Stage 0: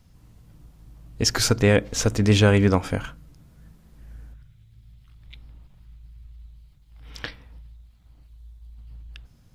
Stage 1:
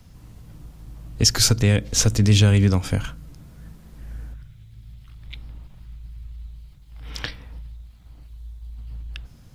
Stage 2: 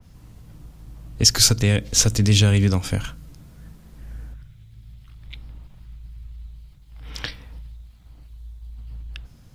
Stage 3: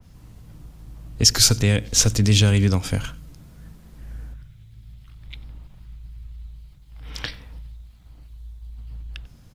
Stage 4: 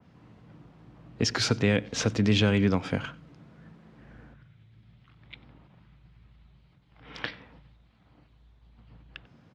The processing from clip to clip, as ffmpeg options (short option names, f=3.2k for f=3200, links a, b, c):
-filter_complex "[0:a]asplit=2[a][b];[b]alimiter=limit=-13dB:level=0:latency=1:release=215,volume=2.5dB[c];[a][c]amix=inputs=2:normalize=0,acrossover=split=190|3000[d][e][f];[e]acompressor=threshold=-34dB:ratio=2[g];[d][g][f]amix=inputs=3:normalize=0"
-af "adynamicequalizer=threshold=0.0141:dfrequency=2400:dqfactor=0.7:tfrequency=2400:tqfactor=0.7:attack=5:release=100:ratio=0.375:range=2:mode=boostabove:tftype=highshelf,volume=-1dB"
-filter_complex "[0:a]asplit=2[a][b];[b]adelay=93.29,volume=-22dB,highshelf=f=4k:g=-2.1[c];[a][c]amix=inputs=2:normalize=0"
-af "highpass=180,lowpass=2.5k"